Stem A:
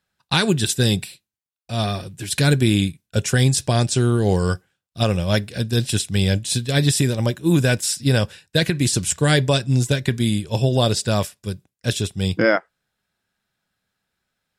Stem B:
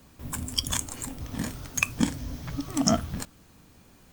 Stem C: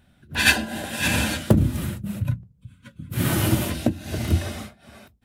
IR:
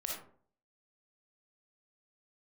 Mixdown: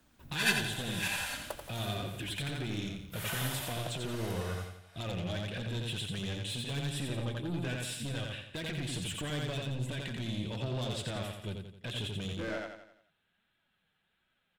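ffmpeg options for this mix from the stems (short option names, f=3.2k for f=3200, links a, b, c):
-filter_complex "[0:a]highshelf=f=4.1k:t=q:w=3:g=-8.5,acompressor=threshold=-20dB:ratio=5,asoftclip=type=tanh:threshold=-24dB,volume=2dB,asplit=2[a][b];[b]volume=-14dB[c];[1:a]acrossover=split=140[d][e];[e]acompressor=threshold=-49dB:ratio=1.5[f];[d][f]amix=inputs=2:normalize=0,acompressor=threshold=-32dB:ratio=6,volume=-8dB[g];[2:a]highpass=f=630:w=0.5412,highpass=f=630:w=1.3066,volume=-11.5dB,asplit=2[h][i];[i]volume=-7dB[j];[a][g]amix=inputs=2:normalize=0,flanger=delay=3:depth=3.5:regen=51:speed=1.4:shape=sinusoidal,alimiter=level_in=8dB:limit=-24dB:level=0:latency=1:release=131,volume=-8dB,volume=0dB[k];[c][j]amix=inputs=2:normalize=0,aecho=0:1:87|174|261|348|435|522:1|0.46|0.212|0.0973|0.0448|0.0206[l];[h][k][l]amix=inputs=3:normalize=0"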